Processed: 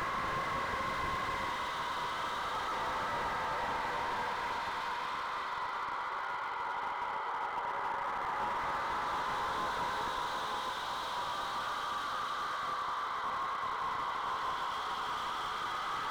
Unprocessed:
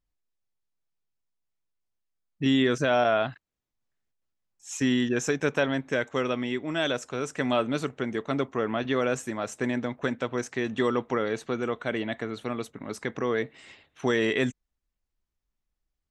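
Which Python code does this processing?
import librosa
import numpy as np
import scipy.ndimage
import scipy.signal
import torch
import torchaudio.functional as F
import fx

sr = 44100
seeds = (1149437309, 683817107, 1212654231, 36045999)

y = fx.partial_stretch(x, sr, pct=80)
y = scipy.signal.sosfilt(scipy.signal.butter(4, 1000.0, 'highpass', fs=sr, output='sos'), y)
y = fx.peak_eq(y, sr, hz=2000.0, db=-6.5, octaves=0.76)
y = y + 10.0 ** (-14.0 / 20.0) * np.pad(y, (int(476 * sr / 1000.0), 0))[:len(y)]
y = fx.paulstretch(y, sr, seeds[0], factor=4.1, window_s=1.0, from_s=6.7)
y = fx.slew_limit(y, sr, full_power_hz=9.9)
y = y * 10.0 ** (8.5 / 20.0)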